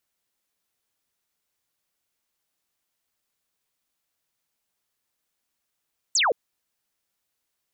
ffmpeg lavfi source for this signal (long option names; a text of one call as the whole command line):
ffmpeg -f lavfi -i "aevalsrc='0.126*clip(t/0.002,0,1)*clip((0.17-t)/0.002,0,1)*sin(2*PI*8300*0.17/log(410/8300)*(exp(log(410/8300)*t/0.17)-1))':duration=0.17:sample_rate=44100" out.wav